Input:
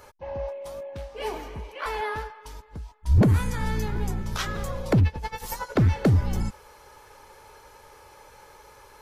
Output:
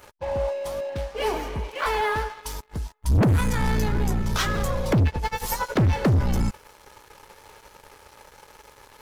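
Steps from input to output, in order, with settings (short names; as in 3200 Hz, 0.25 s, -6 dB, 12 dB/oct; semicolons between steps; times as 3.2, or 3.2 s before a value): 2.28–3.16 high shelf 4800 Hz -> 6900 Hz +10.5 dB; sample leveller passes 3; gain -4.5 dB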